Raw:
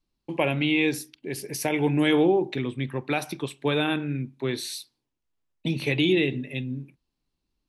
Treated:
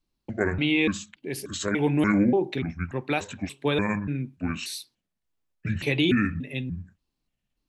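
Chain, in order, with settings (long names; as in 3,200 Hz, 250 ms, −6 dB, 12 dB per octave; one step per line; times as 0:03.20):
pitch shifter gated in a rhythm −7 semitones, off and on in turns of 291 ms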